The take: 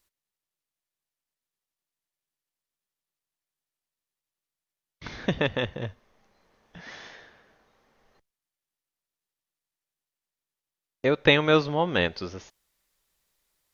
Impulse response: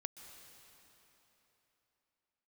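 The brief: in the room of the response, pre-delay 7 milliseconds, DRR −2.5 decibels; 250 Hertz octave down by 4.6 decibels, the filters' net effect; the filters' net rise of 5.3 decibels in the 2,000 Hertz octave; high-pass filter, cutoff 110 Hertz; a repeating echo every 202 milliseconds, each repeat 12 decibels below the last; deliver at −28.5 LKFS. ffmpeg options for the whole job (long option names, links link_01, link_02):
-filter_complex "[0:a]highpass=110,equalizer=frequency=250:width_type=o:gain=-6.5,equalizer=frequency=2000:width_type=o:gain=6.5,aecho=1:1:202|404|606:0.251|0.0628|0.0157,asplit=2[link_01][link_02];[1:a]atrim=start_sample=2205,adelay=7[link_03];[link_02][link_03]afir=irnorm=-1:irlink=0,volume=5.5dB[link_04];[link_01][link_04]amix=inputs=2:normalize=0,volume=-10dB"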